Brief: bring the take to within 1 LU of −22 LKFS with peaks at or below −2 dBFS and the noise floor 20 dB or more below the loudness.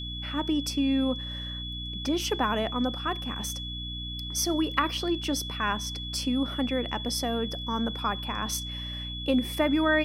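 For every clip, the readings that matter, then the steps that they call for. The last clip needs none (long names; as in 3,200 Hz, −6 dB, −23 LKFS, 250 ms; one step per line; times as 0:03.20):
mains hum 60 Hz; hum harmonics up to 300 Hz; level of the hum −36 dBFS; interfering tone 3,400 Hz; level of the tone −36 dBFS; integrated loudness −29.0 LKFS; sample peak −8.0 dBFS; target loudness −22.0 LKFS
→ hum removal 60 Hz, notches 5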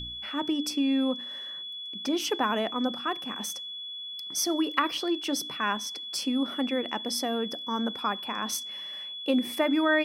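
mains hum none found; interfering tone 3,400 Hz; level of the tone −36 dBFS
→ notch filter 3,400 Hz, Q 30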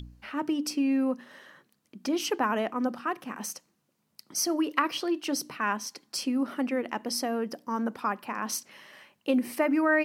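interfering tone none found; integrated loudness −30.0 LKFS; sample peak −8.5 dBFS; target loudness −22.0 LKFS
→ level +8 dB
brickwall limiter −2 dBFS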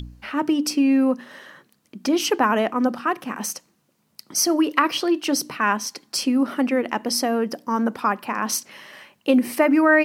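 integrated loudness −22.0 LKFS; sample peak −2.0 dBFS; background noise floor −66 dBFS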